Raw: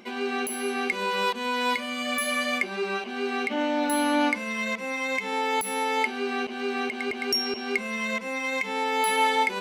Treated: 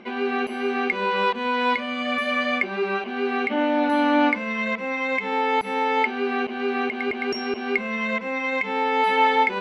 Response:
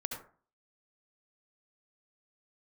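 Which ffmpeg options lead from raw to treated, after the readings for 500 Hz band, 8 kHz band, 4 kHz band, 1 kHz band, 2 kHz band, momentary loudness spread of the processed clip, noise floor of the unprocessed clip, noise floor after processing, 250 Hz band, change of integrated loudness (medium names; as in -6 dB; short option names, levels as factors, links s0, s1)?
+4.5 dB, under -15 dB, -1.5 dB, +4.5 dB, +3.0 dB, 7 LU, -35 dBFS, -32 dBFS, +4.5 dB, +3.5 dB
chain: -af "lowpass=2700,volume=1.68"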